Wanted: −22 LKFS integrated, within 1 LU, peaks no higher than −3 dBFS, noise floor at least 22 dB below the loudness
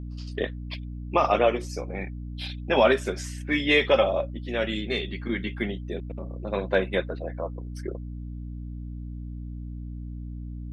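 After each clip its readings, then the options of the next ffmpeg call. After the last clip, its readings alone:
mains hum 60 Hz; hum harmonics up to 300 Hz; level of the hum −33 dBFS; integrated loudness −27.0 LKFS; sample peak −8.0 dBFS; target loudness −22.0 LKFS
→ -af "bandreject=frequency=60:width_type=h:width=6,bandreject=frequency=120:width_type=h:width=6,bandreject=frequency=180:width_type=h:width=6,bandreject=frequency=240:width_type=h:width=6,bandreject=frequency=300:width_type=h:width=6"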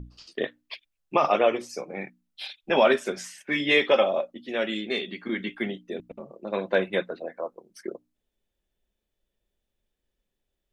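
mains hum none found; integrated loudness −26.0 LKFS; sample peak −8.0 dBFS; target loudness −22.0 LKFS
→ -af "volume=4dB"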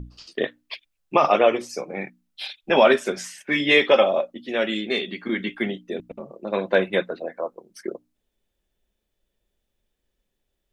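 integrated loudness −22.0 LKFS; sample peak −4.0 dBFS; background noise floor −78 dBFS

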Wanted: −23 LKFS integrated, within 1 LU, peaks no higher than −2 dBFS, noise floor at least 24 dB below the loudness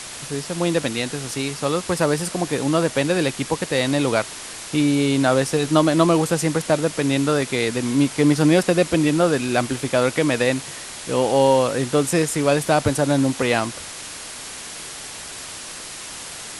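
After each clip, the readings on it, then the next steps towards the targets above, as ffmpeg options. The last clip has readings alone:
background noise floor −35 dBFS; target noise floor −44 dBFS; integrated loudness −20.0 LKFS; sample peak −2.5 dBFS; target loudness −23.0 LKFS
→ -af "afftdn=noise_reduction=9:noise_floor=-35"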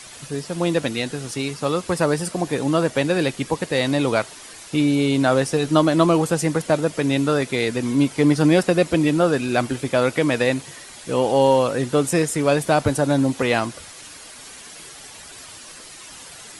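background noise floor −41 dBFS; target noise floor −45 dBFS
→ -af "afftdn=noise_reduction=6:noise_floor=-41"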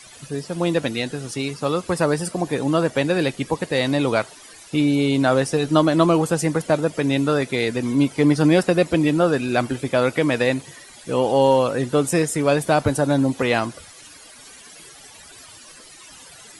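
background noise floor −45 dBFS; integrated loudness −20.5 LKFS; sample peak −2.5 dBFS; target loudness −23.0 LKFS
→ -af "volume=-2.5dB"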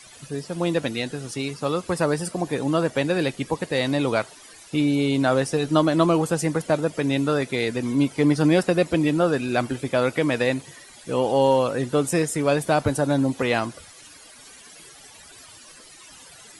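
integrated loudness −23.0 LKFS; sample peak −5.0 dBFS; background noise floor −47 dBFS

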